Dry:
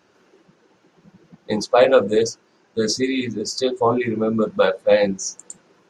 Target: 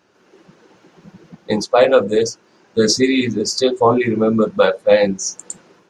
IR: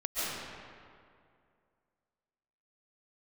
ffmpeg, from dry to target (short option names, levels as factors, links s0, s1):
-af "dynaudnorm=f=130:g=5:m=2.51"